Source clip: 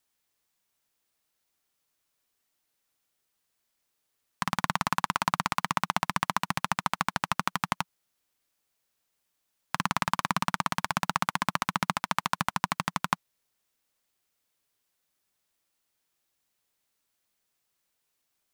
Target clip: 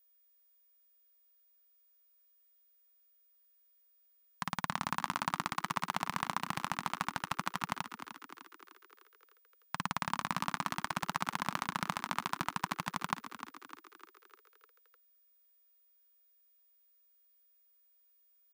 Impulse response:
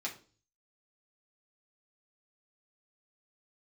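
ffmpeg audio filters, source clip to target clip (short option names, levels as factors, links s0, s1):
-filter_complex "[0:a]asplit=7[s0][s1][s2][s3][s4][s5][s6];[s1]adelay=302,afreqshift=50,volume=0.299[s7];[s2]adelay=604,afreqshift=100,volume=0.168[s8];[s3]adelay=906,afreqshift=150,volume=0.0933[s9];[s4]adelay=1208,afreqshift=200,volume=0.0525[s10];[s5]adelay=1510,afreqshift=250,volume=0.0295[s11];[s6]adelay=1812,afreqshift=300,volume=0.0164[s12];[s0][s7][s8][s9][s10][s11][s12]amix=inputs=7:normalize=0,aeval=exprs='val(0)+0.00112*sin(2*PI*15000*n/s)':c=same,volume=0.422"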